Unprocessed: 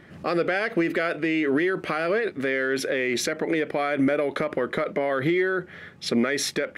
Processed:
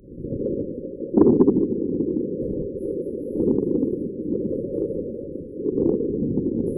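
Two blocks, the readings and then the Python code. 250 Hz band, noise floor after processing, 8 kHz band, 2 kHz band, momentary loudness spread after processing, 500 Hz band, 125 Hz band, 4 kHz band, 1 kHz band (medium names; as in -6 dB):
+4.5 dB, -37 dBFS, under -25 dB, under -35 dB, 12 LU, +1.0 dB, +6.0 dB, under -40 dB, -12.5 dB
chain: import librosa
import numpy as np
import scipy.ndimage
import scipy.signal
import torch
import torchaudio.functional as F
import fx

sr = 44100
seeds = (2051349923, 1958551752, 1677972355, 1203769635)

y = fx.reverse_delay(x, sr, ms=172, wet_db=-1.5)
y = fx.dynamic_eq(y, sr, hz=180.0, q=2.8, threshold_db=-41.0, ratio=4.0, max_db=-5)
y = fx.over_compress(y, sr, threshold_db=-29.0, ratio=-0.5)
y = fx.filter_lfo_lowpass(y, sr, shape='square', hz=0.45, low_hz=300.0, high_hz=4700.0, q=3.7)
y = fx.echo_split(y, sr, split_hz=2100.0, low_ms=81, high_ms=594, feedback_pct=52, wet_db=-7.5)
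y = fx.room_shoebox(y, sr, seeds[0], volume_m3=240.0, walls='mixed', distance_m=3.9)
y = fx.whisperise(y, sr, seeds[1])
y = fx.brickwall_bandstop(y, sr, low_hz=570.0, high_hz=10000.0)
y = fx.transformer_sat(y, sr, knee_hz=280.0)
y = F.gain(torch.from_numpy(y), -9.0).numpy()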